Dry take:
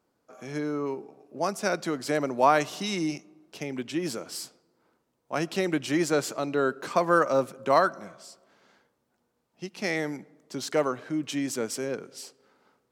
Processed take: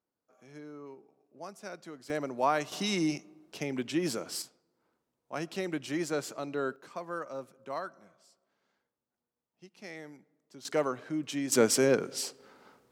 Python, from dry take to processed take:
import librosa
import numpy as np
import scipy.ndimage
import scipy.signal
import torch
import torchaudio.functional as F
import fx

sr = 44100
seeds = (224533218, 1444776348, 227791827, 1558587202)

y = fx.gain(x, sr, db=fx.steps((0.0, -16.0), (2.1, -7.0), (2.72, -0.5), (4.42, -7.5), (6.76, -16.0), (10.65, -4.0), (11.52, 7.0)))